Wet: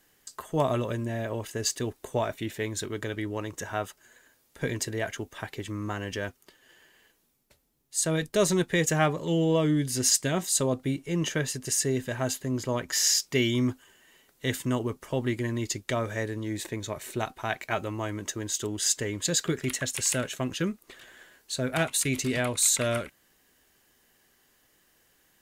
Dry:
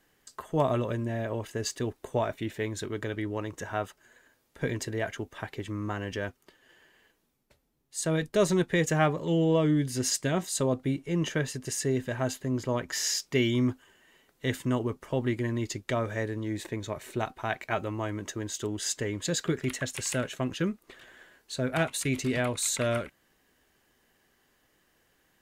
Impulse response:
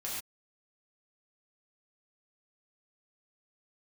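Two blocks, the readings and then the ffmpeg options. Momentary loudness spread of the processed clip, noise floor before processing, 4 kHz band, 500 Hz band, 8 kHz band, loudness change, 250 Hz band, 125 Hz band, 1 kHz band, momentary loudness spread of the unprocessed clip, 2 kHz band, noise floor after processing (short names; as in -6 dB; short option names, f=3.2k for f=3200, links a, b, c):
11 LU, -71 dBFS, +4.5 dB, 0.0 dB, +6.5 dB, +2.0 dB, 0.0 dB, 0.0 dB, +0.5 dB, 10 LU, +1.5 dB, -67 dBFS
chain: -af "highshelf=f=4k:g=8.5"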